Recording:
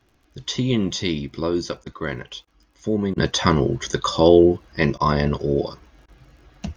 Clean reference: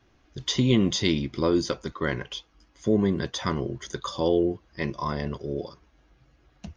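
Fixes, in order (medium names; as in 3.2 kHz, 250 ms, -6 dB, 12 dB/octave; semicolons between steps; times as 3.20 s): de-click; interpolate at 1.84/2.45/3.14/4.98/6.06 s, 21 ms; gain correction -10 dB, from 3.18 s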